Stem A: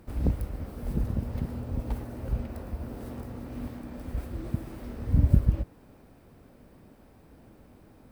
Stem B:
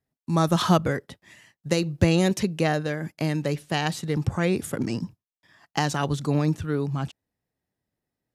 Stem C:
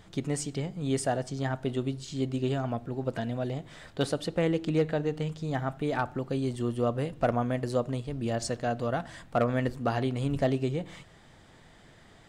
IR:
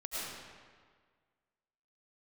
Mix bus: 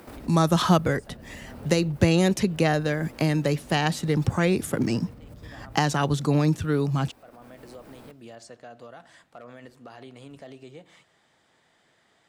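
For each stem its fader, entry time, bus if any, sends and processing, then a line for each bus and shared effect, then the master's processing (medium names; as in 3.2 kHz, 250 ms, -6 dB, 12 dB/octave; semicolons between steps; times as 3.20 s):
-0.5 dB, 0.00 s, bus A, send -14 dB, compression 6:1, threshold -34 dBFS, peak gain reduction 19.5 dB
+2.0 dB, 0.00 s, no bus, no send, none
-18.0 dB, 0.00 s, bus A, no send, none
bus A: 0.0 dB, high-pass 480 Hz 6 dB/octave; peak limiter -44 dBFS, peak gain reduction 12.5 dB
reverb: on, RT60 1.7 s, pre-delay 65 ms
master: three bands compressed up and down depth 40%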